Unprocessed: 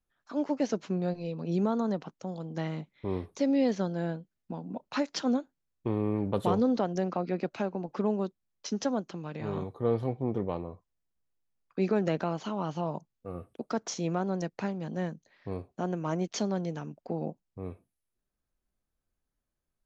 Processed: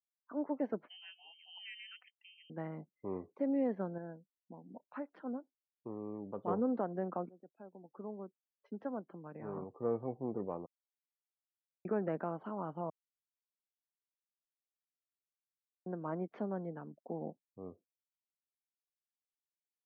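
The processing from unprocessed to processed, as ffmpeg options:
ffmpeg -i in.wav -filter_complex "[0:a]asettb=1/sr,asplit=3[link_01][link_02][link_03];[link_01]atrim=end=0.864[link_04];[link_02]atrim=start=0.86:end=2.5,asetpts=PTS-STARTPTS,afade=type=in:duration=0.004:curve=qsin,afade=type=out:start_time=1.636:duration=0.004:curve=qsin,lowpass=frequency=2800:width_type=q:width=0.5098,lowpass=frequency=2800:width_type=q:width=0.6013,lowpass=frequency=2800:width_type=q:width=0.9,lowpass=frequency=2800:width_type=q:width=2.563,afreqshift=-3300[link_05];[link_03]atrim=start=2.496[link_06];[link_04][link_05]acrossfade=duration=0.004:curve1=hsin:curve2=qsin[link_07];[link_07][link_06]acrossfade=duration=0.004:curve1=qsin:curve2=hsin,asplit=8[link_08][link_09][link_10][link_11][link_12][link_13][link_14][link_15];[link_08]atrim=end=3.982[link_16];[link_09]atrim=start=3.978:end=6.482,asetpts=PTS-STARTPTS,volume=-6dB[link_17];[link_10]atrim=start=6.478:end=7.29,asetpts=PTS-STARTPTS,afade=type=out:start_time=0.808:duration=0.004:curve=hsin:silence=0.0668344[link_18];[link_11]atrim=start=7.29:end=10.66,asetpts=PTS-STARTPTS,afade=type=in:duration=2.47:silence=0.0668344,afade=type=out:start_time=3.366:duration=0.004:curve=hsin[link_19];[link_12]atrim=start=10.66:end=11.85,asetpts=PTS-STARTPTS,volume=0[link_20];[link_13]atrim=start=11.85:end=12.9,asetpts=PTS-STARTPTS,afade=type=in:duration=0.004:curve=hsin,afade=type=out:start_time=1.046:duration=0.004:curve=hsin[link_21];[link_14]atrim=start=12.9:end=15.86,asetpts=PTS-STARTPTS,volume=0[link_22];[link_15]atrim=start=15.86,asetpts=PTS-STARTPTS,afade=type=in:duration=0.004:curve=hsin[link_23];[link_16][link_17]acrossfade=duration=0.004:curve1=hsin:curve2=hsin[link_24];[link_18][link_19][link_20][link_21][link_22][link_23]concat=n=6:v=0:a=1[link_25];[link_24][link_25]acrossfade=duration=0.004:curve1=hsin:curve2=hsin,highpass=180,afftdn=noise_reduction=34:noise_floor=-51,lowpass=frequency=1800:width=0.5412,lowpass=frequency=1800:width=1.3066,volume=-6.5dB" out.wav

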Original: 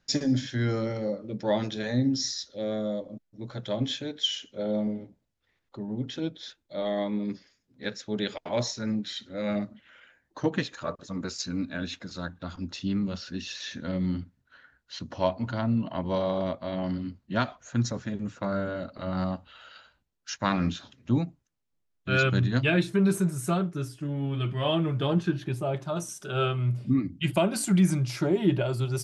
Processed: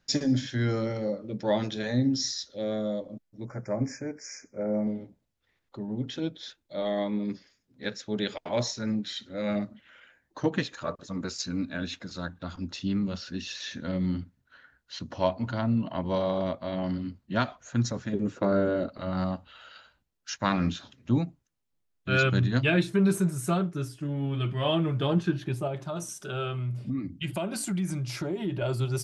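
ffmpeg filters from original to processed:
ffmpeg -i in.wav -filter_complex "[0:a]asettb=1/sr,asplit=3[link_01][link_02][link_03];[link_01]atrim=end=3.454[link_04];[link_02]atrim=start=3.45:end=4.87,asetpts=PTS-STARTPTS,afade=type=in:duration=0.004:curve=qsin,afade=type=out:start_time=1.416:duration=0.004:curve=qsin,asuperstop=centerf=3400:order=20:qfactor=1.4[link_05];[link_03]atrim=start=4.866[link_06];[link_04][link_05]acrossfade=duration=0.004:curve1=hsin:curve2=qsin[link_07];[link_07][link_06]acrossfade=duration=0.004:curve1=qsin:curve2=hsin,asettb=1/sr,asplit=3[link_08][link_09][link_10];[link_08]atrim=end=18.134[link_11];[link_09]atrim=start=18.13:end=18.89,asetpts=PTS-STARTPTS,afade=type=in:duration=0.004:curve=qsin,afade=type=out:start_time=0.756:duration=0.004:curve=qsin,equalizer=frequency=380:width=1.2:gain=12[link_12];[link_10]atrim=start=18.886[link_13];[link_11][link_12]acrossfade=duration=0.004:curve1=hsin:curve2=qsin[link_14];[link_14][link_13]acrossfade=duration=0.004:curve1=qsin:curve2=hsin,asettb=1/sr,asplit=3[link_15][link_16][link_17];[link_15]atrim=end=25.674[link_18];[link_16]atrim=start=25.67:end=28.62,asetpts=PTS-STARTPTS,afade=type=in:duration=0.004:curve=qsin,afade=type=out:start_time=2.946:duration=0.004:curve=qsin,acompressor=threshold=-30dB:ratio=2.5:attack=3.2:release=140:knee=1:detection=peak[link_19];[link_17]atrim=start=28.616[link_20];[link_18][link_19]acrossfade=duration=0.004:curve1=hsin:curve2=qsin[link_21];[link_21][link_20]acrossfade=duration=0.004:curve1=qsin:curve2=hsin" out.wav

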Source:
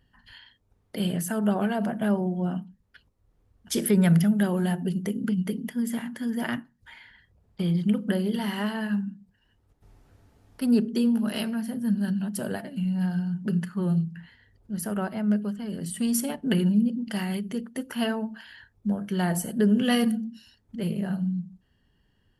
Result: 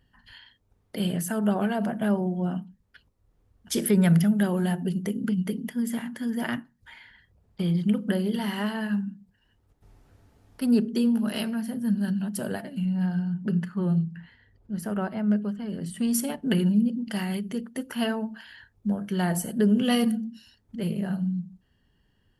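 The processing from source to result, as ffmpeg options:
ffmpeg -i in.wav -filter_complex "[0:a]asettb=1/sr,asplit=3[link_01][link_02][link_03];[link_01]atrim=end=12.854[link_04];[link_02]atrim=start=12.85:end=16.11,asetpts=PTS-STARTPTS,afade=type=in:duration=0.004:curve=qsin,afade=type=out:start_time=3.256:duration=0.004:curve=qsin,aemphasis=mode=reproduction:type=cd[link_05];[link_03]atrim=start=16.106[link_06];[link_04][link_05]acrossfade=duration=0.004:curve1=hsin:curve2=qsin[link_07];[link_07][link_06]acrossfade=duration=0.004:curve1=qsin:curve2=hsin,asettb=1/sr,asplit=3[link_08][link_09][link_10];[link_08]atrim=end=19.624[link_11];[link_09]atrim=start=19.62:end=20.08,asetpts=PTS-STARTPTS,afade=type=in:duration=0.004:curve=qsin,afade=type=out:start_time=0.456:duration=0.004:curve=qsin,equalizer=frequency=1700:width=4.4:gain=-6[link_12];[link_10]atrim=start=20.076[link_13];[link_11][link_12]acrossfade=duration=0.004:curve1=hsin:curve2=qsin[link_14];[link_14][link_13]acrossfade=duration=0.004:curve1=qsin:curve2=hsin" out.wav

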